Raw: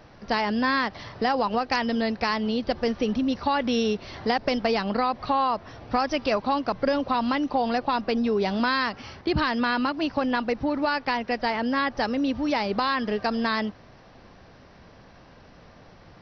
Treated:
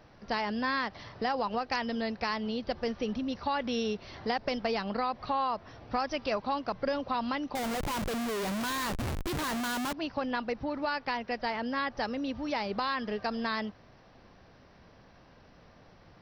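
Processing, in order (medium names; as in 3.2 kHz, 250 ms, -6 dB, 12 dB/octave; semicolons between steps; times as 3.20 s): dynamic bell 290 Hz, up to -3 dB, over -37 dBFS, Q 2.1; 7.55–9.93 s: Schmitt trigger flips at -37 dBFS; trim -6.5 dB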